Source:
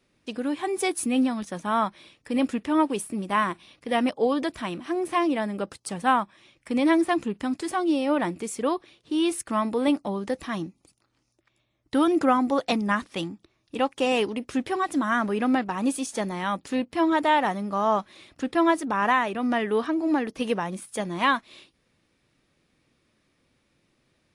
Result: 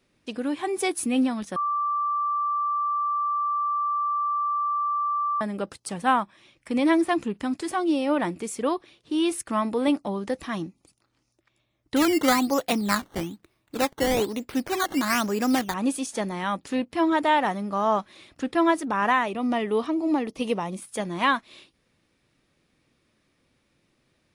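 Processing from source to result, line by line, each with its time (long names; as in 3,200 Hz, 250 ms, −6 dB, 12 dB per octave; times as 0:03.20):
0:01.56–0:05.41: beep over 1,170 Hz −22.5 dBFS
0:11.96–0:15.74: sample-and-hold swept by an LFO 12× 1.1 Hz
0:19.26–0:20.82: parametric band 1,600 Hz −13 dB 0.3 octaves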